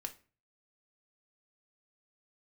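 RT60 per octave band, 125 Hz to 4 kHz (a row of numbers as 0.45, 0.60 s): 0.60, 0.45, 0.40, 0.35, 0.35, 0.30 s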